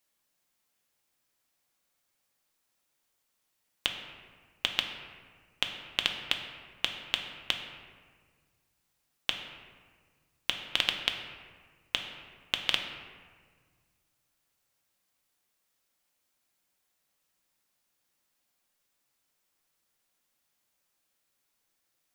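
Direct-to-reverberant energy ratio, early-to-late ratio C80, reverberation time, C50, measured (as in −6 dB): 3.0 dB, 7.5 dB, 1.7 s, 6.0 dB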